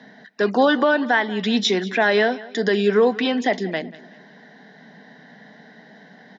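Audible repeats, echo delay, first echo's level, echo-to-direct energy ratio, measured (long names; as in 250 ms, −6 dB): 3, 188 ms, −19.5 dB, −18.5 dB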